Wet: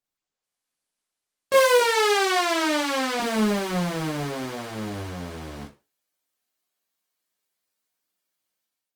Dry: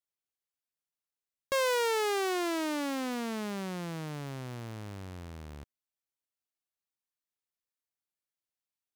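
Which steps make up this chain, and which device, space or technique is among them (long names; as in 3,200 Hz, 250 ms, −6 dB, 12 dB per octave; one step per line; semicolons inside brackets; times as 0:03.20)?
0:01.79–0:03.20: meter weighting curve A
far-field microphone of a smart speaker (convolution reverb RT60 0.30 s, pre-delay 13 ms, DRR −5 dB; high-pass filter 140 Hz 12 dB per octave; automatic gain control gain up to 9.5 dB; level −3.5 dB; Opus 24 kbit/s 48,000 Hz)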